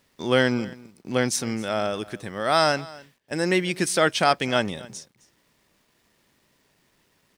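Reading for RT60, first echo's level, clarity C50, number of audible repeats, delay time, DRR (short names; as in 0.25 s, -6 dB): none, -21.0 dB, none, 1, 0.262 s, none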